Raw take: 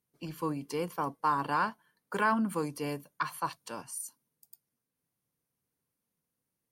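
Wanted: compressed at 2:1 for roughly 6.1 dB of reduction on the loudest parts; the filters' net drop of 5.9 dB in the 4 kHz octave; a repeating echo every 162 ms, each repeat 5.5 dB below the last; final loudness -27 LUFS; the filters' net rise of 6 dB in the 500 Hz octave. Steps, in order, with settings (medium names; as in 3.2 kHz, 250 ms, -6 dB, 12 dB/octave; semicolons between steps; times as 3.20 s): peaking EQ 500 Hz +7 dB; peaking EQ 4 kHz -8.5 dB; compression 2:1, threshold -34 dBFS; feedback delay 162 ms, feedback 53%, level -5.5 dB; trim +8.5 dB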